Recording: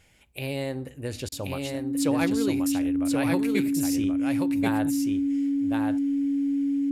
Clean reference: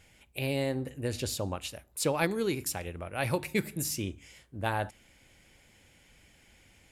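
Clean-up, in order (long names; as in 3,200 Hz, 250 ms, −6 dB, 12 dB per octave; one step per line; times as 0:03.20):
notch filter 280 Hz, Q 30
repair the gap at 0:01.29, 28 ms
echo removal 1,081 ms −3.5 dB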